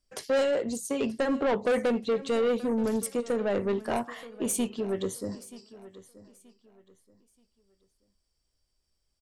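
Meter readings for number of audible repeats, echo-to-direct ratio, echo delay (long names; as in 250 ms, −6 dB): 2, −17.5 dB, 929 ms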